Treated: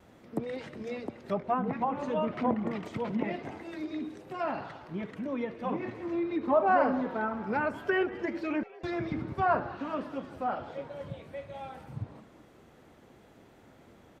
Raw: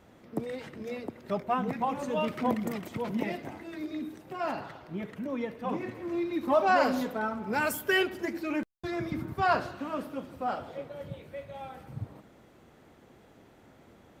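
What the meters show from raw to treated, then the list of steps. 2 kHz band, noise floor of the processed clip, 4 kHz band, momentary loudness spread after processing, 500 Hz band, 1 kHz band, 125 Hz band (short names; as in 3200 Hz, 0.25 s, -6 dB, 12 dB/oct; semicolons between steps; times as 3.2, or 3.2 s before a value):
-3.0 dB, -57 dBFS, -9.0 dB, 13 LU, 0.0 dB, -0.5 dB, 0.0 dB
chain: treble ducked by the level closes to 1500 Hz, closed at -25 dBFS; frequency-shifting echo 0.19 s, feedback 58%, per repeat +100 Hz, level -20 dB; vibrato 0.61 Hz 13 cents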